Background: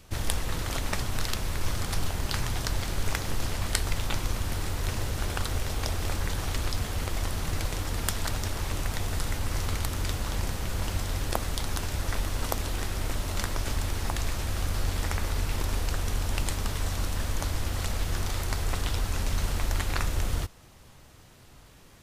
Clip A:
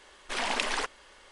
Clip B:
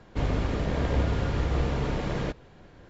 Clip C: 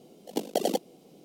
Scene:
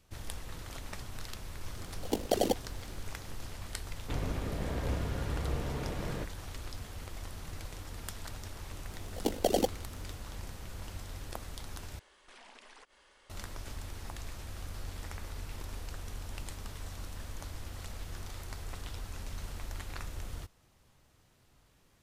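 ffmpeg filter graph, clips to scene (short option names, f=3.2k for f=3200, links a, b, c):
-filter_complex "[3:a]asplit=2[a][b];[0:a]volume=-13dB[c];[1:a]acompressor=threshold=-44dB:ratio=6:attack=3.2:release=140:knee=1:detection=peak[d];[c]asplit=2[e][f];[e]atrim=end=11.994[g];[d]atrim=end=1.31,asetpts=PTS-STARTPTS,volume=-8.5dB[h];[f]atrim=start=13.296[i];[a]atrim=end=1.24,asetpts=PTS-STARTPTS,volume=-1.5dB,afade=t=in:d=0.004:c=hsin,afade=t=out:st=1.236:d=0.004:c=hsin,adelay=1760[j];[2:a]atrim=end=2.89,asetpts=PTS-STARTPTS,volume=-8.5dB,afade=t=in:d=0.004:c=hsin,afade=t=out:st=2.886:d=0.004:c=hsin,adelay=173313S[k];[b]atrim=end=1.24,asetpts=PTS-STARTPTS,volume=-1dB,afade=t=in:d=0.004:c=hsin,afade=t=out:st=1.236:d=0.004:c=hsin,adelay=8890[l];[g][h]acrossfade=d=0.004:c1=hsin:c2=hsin[m];[m][i]acrossfade=d=0.004:c1=hsin:c2=hsin[n];[n][j][k][l]amix=inputs=4:normalize=0"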